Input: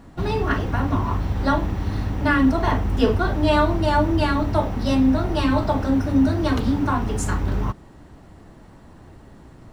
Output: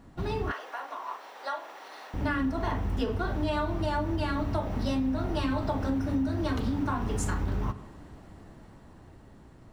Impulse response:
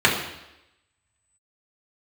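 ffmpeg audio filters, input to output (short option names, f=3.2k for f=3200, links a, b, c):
-filter_complex "[0:a]dynaudnorm=f=260:g=13:m=8dB,asplit=2[a][b];[1:a]atrim=start_sample=2205,adelay=36[c];[b][c]afir=irnorm=-1:irlink=0,volume=-34dB[d];[a][d]amix=inputs=2:normalize=0,acompressor=threshold=-18dB:ratio=6,asettb=1/sr,asplit=3[e][f][g];[e]atrim=end=0.514[h];[f]atrim=start=0.51:end=2.14,asetpts=PTS-STARTPTS,afade=t=in:d=0.004:c=qsin,afade=t=out:st=1.626:d=0.004:c=qsin,highpass=f=550:w=0.5412,highpass=f=550:w=1.3066[i];[g]atrim=start=2.136[j];[h][i]acrossfade=d=0.004:c1=hsin:c2=qsin[k];[k][j]acrossfade=d=0.004:c1=qsin:c2=hsin,volume=-7.5dB"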